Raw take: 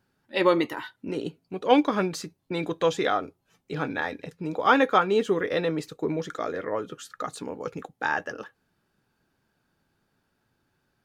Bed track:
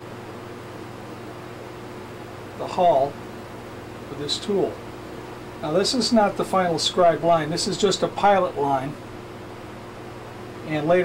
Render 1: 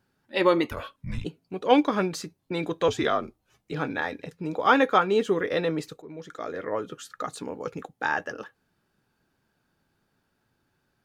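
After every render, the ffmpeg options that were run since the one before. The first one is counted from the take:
-filter_complex "[0:a]asplit=3[a][b][c];[a]afade=t=out:st=0.7:d=0.02[d];[b]afreqshift=-390,afade=t=in:st=0.7:d=0.02,afade=t=out:st=1.24:d=0.02[e];[c]afade=t=in:st=1.24:d=0.02[f];[d][e][f]amix=inputs=3:normalize=0,asettb=1/sr,asplit=3[g][h][i];[g]atrim=end=2.884[j];[h]atrim=start=2.88:end=3.72,asetpts=PTS-STARTPTS,afade=t=in:d=0.004:c=qsin,afade=t=out:st=0.836:d=0.004:c=qsin,afreqshift=-53[k];[i]atrim=start=3.716[l];[j][k]acrossfade=d=0.004:c1=hsin:c2=qsin[m];[m][l]acrossfade=d=0.004:c1=qsin:c2=hsin,asplit=2[n][o];[n]atrim=end=6.02,asetpts=PTS-STARTPTS,afade=t=out:st=6.016:d=0.004:c=hsin:silence=0.1[p];[o]atrim=start=6.02,asetpts=PTS-STARTPTS,afade=t=in:d=0.72:silence=0.1[q];[p][q]concat=n=2:v=0:a=1"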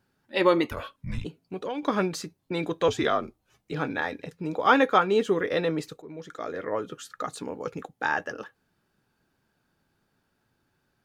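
-filter_complex "[0:a]asettb=1/sr,asplit=3[a][b][c];[a]atrim=end=1.244[d];[b]atrim=start=1.24:end=1.83,asetpts=PTS-STARTPTS,afade=t=in:d=0.004:c=qsin,afade=t=out:st=0.586:d=0.004:c=qsin,acompressor=threshold=-28dB:ratio=10:attack=3.2:release=140:knee=1:detection=peak[e];[c]atrim=start=1.826[f];[d][e]acrossfade=d=0.004:c1=hsin:c2=qsin[g];[g][f]acrossfade=d=0.004:c1=qsin:c2=hsin"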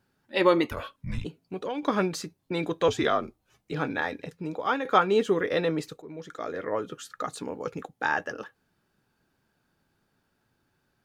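-filter_complex "[0:a]asplit=2[a][b];[a]atrim=end=4.85,asetpts=PTS-STARTPTS,afade=t=out:st=4.31:d=0.54:silence=0.237137[c];[b]atrim=start=4.85,asetpts=PTS-STARTPTS,afade=t=in:d=0.004:c=hsin:silence=0.237137[d];[c][d]concat=n=2:v=0:a=1"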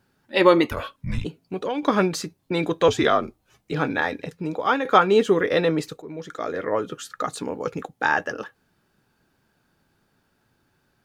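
-af "volume=5.5dB,alimiter=limit=-2dB:level=0:latency=1"

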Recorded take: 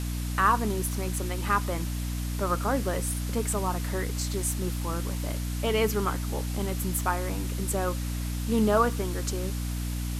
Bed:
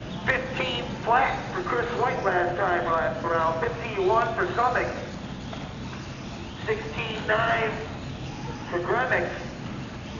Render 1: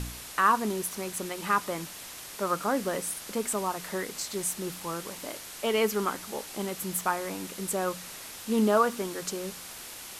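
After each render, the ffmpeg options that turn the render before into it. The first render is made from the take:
-af "bandreject=f=60:t=h:w=4,bandreject=f=120:t=h:w=4,bandreject=f=180:t=h:w=4,bandreject=f=240:t=h:w=4,bandreject=f=300:t=h:w=4"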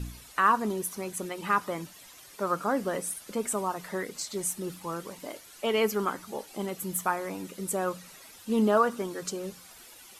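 -af "afftdn=nr=12:nf=-43"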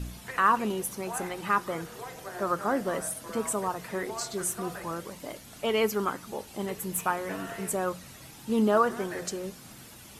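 -filter_complex "[1:a]volume=-17dB[a];[0:a][a]amix=inputs=2:normalize=0"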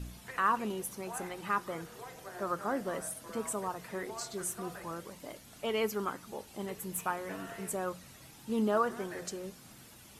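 -af "volume=-6dB"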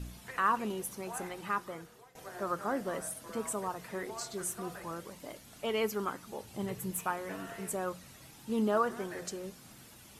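-filter_complex "[0:a]asettb=1/sr,asplit=3[a][b][c];[a]atrim=end=6.434[d];[b]atrim=start=6.43:end=6.91,asetpts=PTS-STARTPTS,afade=t=in:d=0.004:c=qsin,afade=t=out:st=0.476:d=0.004:c=qsin,equalizer=f=120:w=1.5:g=13[e];[c]atrim=start=6.906[f];[d][e]acrossfade=d=0.004:c1=hsin:c2=qsin[g];[g][f]acrossfade=d=0.004:c1=qsin:c2=hsin,asplit=2[h][i];[h]atrim=end=2.15,asetpts=PTS-STARTPTS,afade=t=out:st=1.12:d=1.03:c=qsin:silence=0.125893[j];[i]atrim=start=2.15,asetpts=PTS-STARTPTS,afade=t=in:d=0.004:c=hsin:silence=0.125893[k];[j][k]concat=n=2:v=0:a=1"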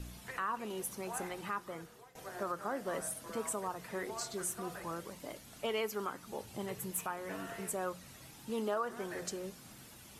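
-filter_complex "[0:a]acrossover=split=360[a][b];[a]acompressor=threshold=-43dB:ratio=6[c];[c][b]amix=inputs=2:normalize=0,alimiter=level_in=1.5dB:limit=-24dB:level=0:latency=1:release=276,volume=-1.5dB"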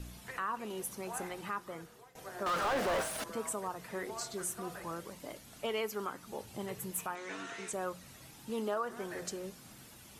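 -filter_complex "[0:a]asettb=1/sr,asplit=3[a][b][c];[a]atrim=end=2.464[d];[b]atrim=start=2.46:end=3.24,asetpts=PTS-STARTPTS,afade=t=in:d=0.004:c=qsin,afade=t=out:st=0.776:d=0.004:c=qsin,asplit=2[e][f];[f]highpass=f=720:p=1,volume=36dB,asoftclip=type=tanh:threshold=-25dB[g];[e][g]amix=inputs=2:normalize=0,lowpass=f=2.5k:p=1,volume=-6dB[h];[c]atrim=start=3.236[i];[d][h]acrossfade=d=0.004:c1=hsin:c2=qsin[j];[j][i]acrossfade=d=0.004:c1=qsin:c2=hsin,asettb=1/sr,asplit=3[k][l][m];[k]atrim=end=7.154[n];[l]atrim=start=7.15:end=7.73,asetpts=PTS-STARTPTS,afade=t=in:d=0.004:c=qsin,afade=t=out:st=0.576:d=0.004:c=qsin,highpass=160,equalizer=f=170:t=q:w=4:g=-9,equalizer=f=600:t=q:w=4:g=-8,equalizer=f=1.4k:t=q:w=4:g=3,equalizer=f=2.3k:t=q:w=4:g=7,equalizer=f=3.7k:t=q:w=4:g=8,equalizer=f=6.3k:t=q:w=4:g=7,lowpass=f=8.5k:w=0.5412,lowpass=f=8.5k:w=1.3066[o];[m]atrim=start=7.726[p];[n][o]acrossfade=d=0.004:c1=hsin:c2=qsin[q];[q][p]acrossfade=d=0.004:c1=qsin:c2=hsin"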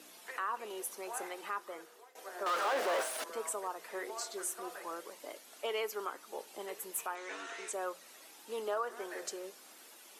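-af "highpass=f=350:w=0.5412,highpass=f=350:w=1.3066"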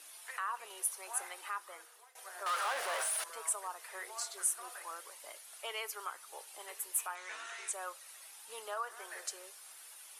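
-af "highpass=880,equalizer=f=9.7k:w=3.6:g=10.5"

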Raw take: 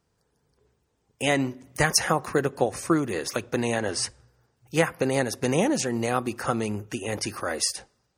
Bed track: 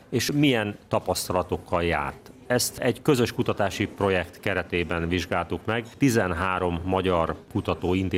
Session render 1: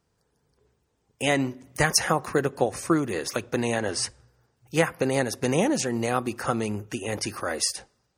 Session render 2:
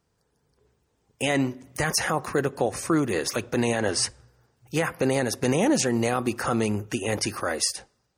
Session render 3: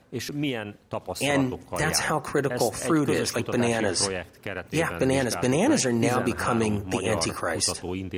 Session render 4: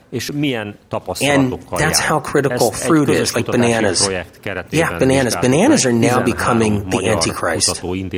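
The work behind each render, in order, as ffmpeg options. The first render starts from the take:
-af anull
-af "dynaudnorm=f=130:g=13:m=4dB,alimiter=limit=-12.5dB:level=0:latency=1:release=15"
-filter_complex "[1:a]volume=-7.5dB[a];[0:a][a]amix=inputs=2:normalize=0"
-af "volume=9.5dB,alimiter=limit=-1dB:level=0:latency=1"

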